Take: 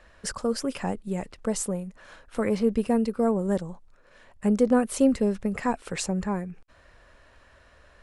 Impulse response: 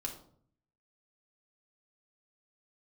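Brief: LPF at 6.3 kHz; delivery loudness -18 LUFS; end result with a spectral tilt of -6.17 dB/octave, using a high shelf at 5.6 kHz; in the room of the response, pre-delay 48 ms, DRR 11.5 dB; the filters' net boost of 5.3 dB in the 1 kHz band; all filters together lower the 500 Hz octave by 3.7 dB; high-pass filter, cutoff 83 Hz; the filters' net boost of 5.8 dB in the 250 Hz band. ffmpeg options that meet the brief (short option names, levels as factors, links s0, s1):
-filter_complex "[0:a]highpass=83,lowpass=6300,equalizer=f=250:t=o:g=8,equalizer=f=500:t=o:g=-8.5,equalizer=f=1000:t=o:g=9,highshelf=f=5600:g=7,asplit=2[s0][s1];[1:a]atrim=start_sample=2205,adelay=48[s2];[s1][s2]afir=irnorm=-1:irlink=0,volume=0.266[s3];[s0][s3]amix=inputs=2:normalize=0,volume=1.58"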